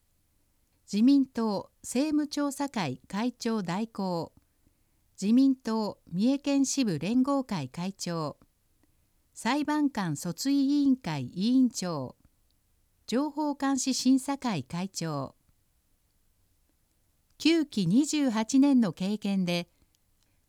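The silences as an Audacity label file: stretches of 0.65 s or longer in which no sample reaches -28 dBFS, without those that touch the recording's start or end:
4.240000	5.230000	silence
8.290000	9.450000	silence
12.050000	13.100000	silence
15.250000	17.420000	silence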